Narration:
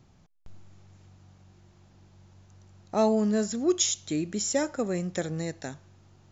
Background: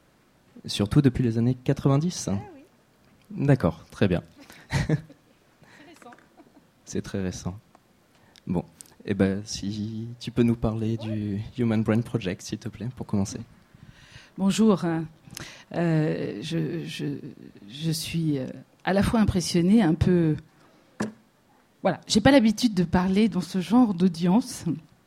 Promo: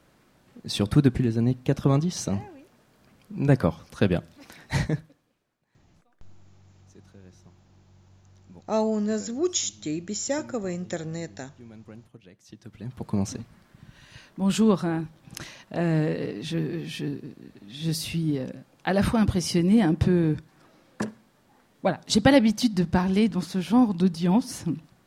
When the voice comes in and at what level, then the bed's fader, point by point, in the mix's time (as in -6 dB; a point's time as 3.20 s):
5.75 s, -1.0 dB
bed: 4.83 s 0 dB
5.64 s -22.5 dB
12.30 s -22.5 dB
12.96 s -0.5 dB